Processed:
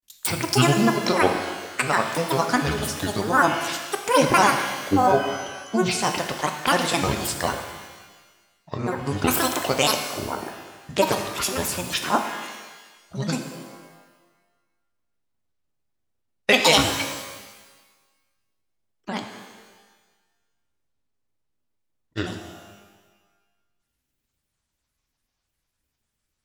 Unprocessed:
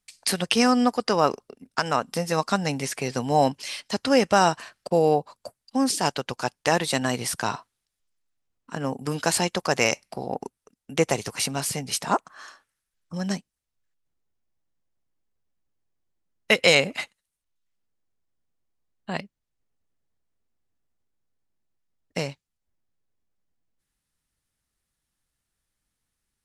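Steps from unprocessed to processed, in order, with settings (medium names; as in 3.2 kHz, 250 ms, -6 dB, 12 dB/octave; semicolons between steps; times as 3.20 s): granulator, grains 20 per s, spray 19 ms, pitch spread up and down by 12 st; pitch-shifted reverb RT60 1.3 s, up +12 st, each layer -8 dB, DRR 4.5 dB; trim +2 dB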